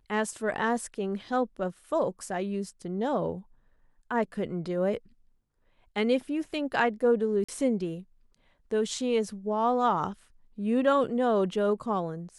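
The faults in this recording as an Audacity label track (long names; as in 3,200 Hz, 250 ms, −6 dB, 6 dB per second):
7.440000	7.490000	drop-out 45 ms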